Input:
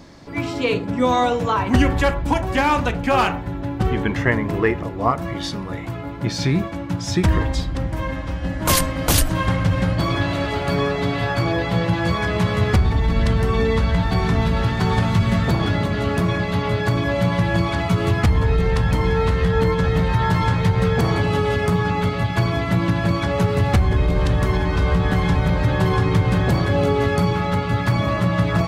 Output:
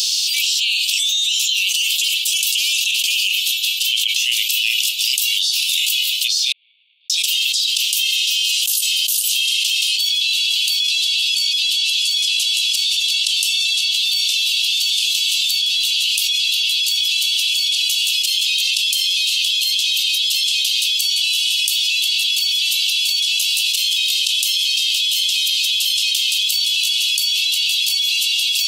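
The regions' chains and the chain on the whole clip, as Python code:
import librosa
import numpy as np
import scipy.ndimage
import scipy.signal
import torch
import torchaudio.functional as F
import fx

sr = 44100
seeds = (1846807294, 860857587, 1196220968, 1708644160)

y = fx.chain(x, sr, fx.schmitt(flips_db=-36.0),
    fx.formant_cascade(vowel='u'), at=(6.52, 7.1))
y = fx.chain(y, sr, fx.lowpass(hz=11000.0, slope=12),
    fx.high_shelf(hz=6300.0, db=6.0),
    fx.env_flatten(amount_pct=50), at=(10.88, 13.81))
y = scipy.signal.sosfilt(scipy.signal.butter(16, 2700.0, 'highpass', fs=sr, output='sos'), y)
y = fx.high_shelf(y, sr, hz=9500.0, db=8.0)
y = fx.env_flatten(y, sr, amount_pct=100)
y = y * librosa.db_to_amplitude(-4.0)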